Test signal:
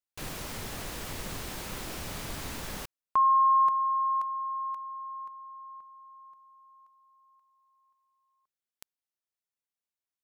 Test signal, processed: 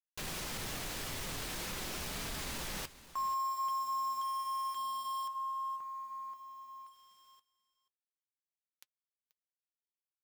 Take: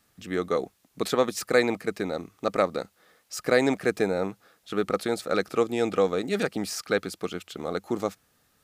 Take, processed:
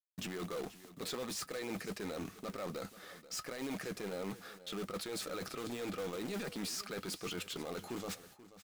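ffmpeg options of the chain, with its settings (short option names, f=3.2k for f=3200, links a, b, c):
-filter_complex "[0:a]aemphasis=mode=reproduction:type=cd,agate=range=-33dB:threshold=-59dB:ratio=3:release=113:detection=rms,highshelf=f=2.6k:g=11,areverse,acompressor=threshold=-37dB:ratio=5:attack=1.1:release=63:knee=1:detection=rms,areverse,alimiter=level_in=9dB:limit=-24dB:level=0:latency=1:release=25,volume=-9dB,asplit=2[a][b];[b]aeval=exprs='(mod(94.4*val(0)+1,2)-1)/94.4':c=same,volume=-7dB[c];[a][c]amix=inputs=2:normalize=0,acrusher=bits=10:mix=0:aa=0.000001,flanger=delay=4.2:depth=3.5:regen=-61:speed=0.45:shape=triangular,aecho=1:1:484:0.15,volume=5.5dB"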